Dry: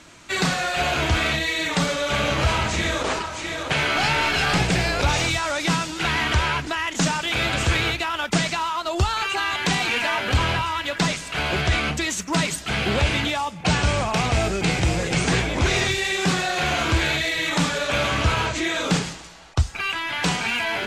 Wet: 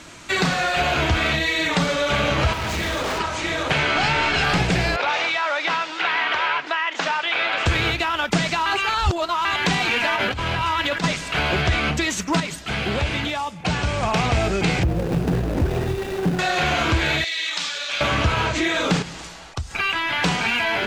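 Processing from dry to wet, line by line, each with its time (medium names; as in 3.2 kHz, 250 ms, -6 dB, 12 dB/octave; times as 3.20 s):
2.53–3.20 s: hard clipper -27.5 dBFS
3.78–4.44 s: steep low-pass 9.2 kHz 72 dB/octave
4.96–7.66 s: band-pass 610–3400 Hz
8.66–9.45 s: reverse
10.16–11.04 s: compressor with a negative ratio -27 dBFS
12.40–14.03 s: gain -6 dB
14.83–16.39 s: median filter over 41 samples
17.24–18.01 s: band-pass filter 4.7 kHz, Q 1.1
19.02–19.71 s: compression 2.5:1, threshold -36 dBFS
whole clip: dynamic bell 9.6 kHz, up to -7 dB, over -44 dBFS, Q 0.71; compression 2:1, threshold -25 dBFS; trim +5.5 dB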